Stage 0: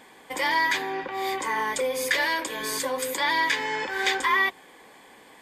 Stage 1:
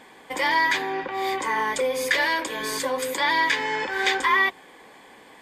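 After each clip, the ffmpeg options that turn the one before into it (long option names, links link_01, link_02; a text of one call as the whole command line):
ffmpeg -i in.wav -af "highshelf=frequency=7300:gain=-6.5,volume=2.5dB" out.wav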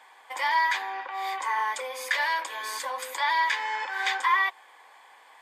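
ffmpeg -i in.wav -af "highpass=frequency=890:width_type=q:width=1.7,volume=-6dB" out.wav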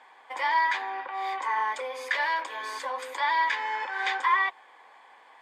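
ffmpeg -i in.wav -af "aemphasis=mode=reproduction:type=bsi" out.wav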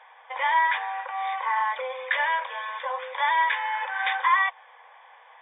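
ffmpeg -i in.wav -af "afftfilt=real='re*between(b*sr/4096,450,3700)':imag='im*between(b*sr/4096,450,3700)':win_size=4096:overlap=0.75,volume=2.5dB" out.wav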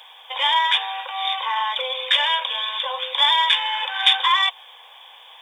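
ffmpeg -i in.wav -af "aexciter=amount=9.9:drive=8.4:freq=3000,volume=1.5dB" out.wav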